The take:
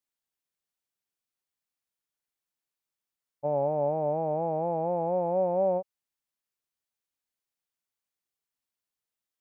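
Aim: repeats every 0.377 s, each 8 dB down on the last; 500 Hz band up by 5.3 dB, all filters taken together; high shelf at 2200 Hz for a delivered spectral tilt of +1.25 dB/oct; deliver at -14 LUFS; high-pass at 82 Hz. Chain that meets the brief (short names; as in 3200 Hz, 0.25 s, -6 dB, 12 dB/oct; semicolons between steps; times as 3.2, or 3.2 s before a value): HPF 82 Hz; bell 500 Hz +6.5 dB; high shelf 2200 Hz -4.5 dB; feedback echo 0.377 s, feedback 40%, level -8 dB; gain +10 dB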